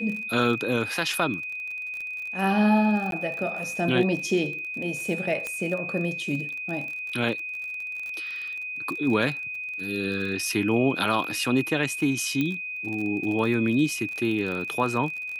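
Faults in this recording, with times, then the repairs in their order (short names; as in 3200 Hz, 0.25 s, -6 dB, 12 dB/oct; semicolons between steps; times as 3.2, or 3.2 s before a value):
crackle 33/s -32 dBFS
tone 2500 Hz -31 dBFS
3.11–3.12 gap 12 ms
5.47 pop -16 dBFS
12.41 pop -14 dBFS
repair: de-click; notch 2500 Hz, Q 30; interpolate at 3.11, 12 ms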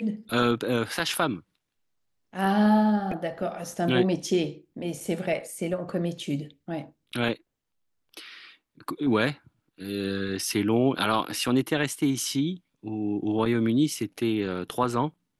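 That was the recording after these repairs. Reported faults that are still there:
none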